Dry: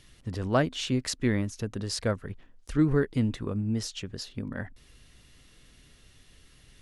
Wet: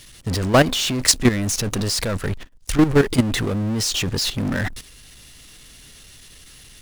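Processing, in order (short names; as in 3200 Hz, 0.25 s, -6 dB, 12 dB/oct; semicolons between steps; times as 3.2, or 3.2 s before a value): 1.48–2.97 half-wave gain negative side -7 dB; gate -47 dBFS, range -36 dB; high shelf 2900 Hz +10.5 dB; level quantiser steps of 23 dB; power-law curve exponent 0.5; gain +5 dB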